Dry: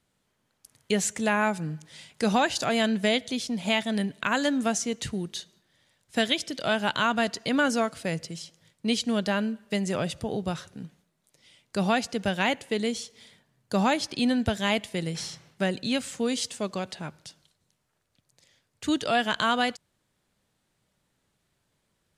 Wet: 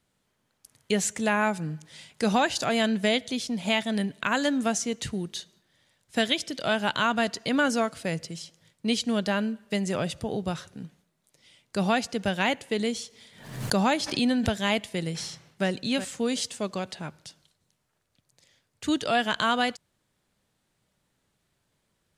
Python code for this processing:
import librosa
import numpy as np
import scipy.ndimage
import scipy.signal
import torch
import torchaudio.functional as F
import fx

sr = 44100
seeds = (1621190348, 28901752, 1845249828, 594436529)

y = fx.pre_swell(x, sr, db_per_s=78.0, at=(12.77, 14.56))
y = fx.echo_throw(y, sr, start_s=15.27, length_s=0.4, ms=370, feedback_pct=15, wet_db=-11.0)